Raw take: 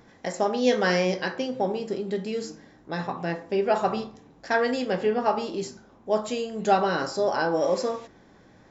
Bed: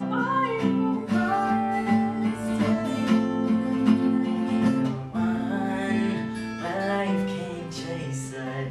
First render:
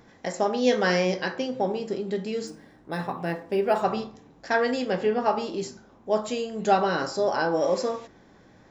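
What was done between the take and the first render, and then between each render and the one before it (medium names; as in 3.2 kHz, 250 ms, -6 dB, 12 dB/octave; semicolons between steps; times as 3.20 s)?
2.47–3.82 s: decimation joined by straight lines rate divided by 3×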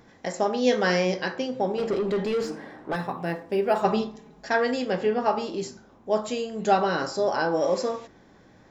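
1.78–2.96 s: overdrive pedal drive 23 dB, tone 1.2 kHz, clips at -17 dBFS; 3.84–4.49 s: comb 4.8 ms, depth 96%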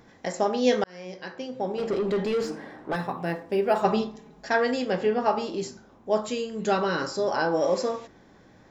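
0.84–2.05 s: fade in; 6.25–7.31 s: peaking EQ 720 Hz -13 dB 0.24 oct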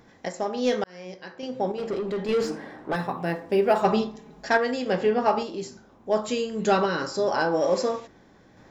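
in parallel at -7 dB: overload inside the chain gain 17.5 dB; on the sum: random-step tremolo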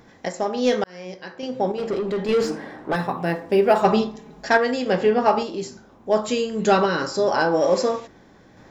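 trim +4 dB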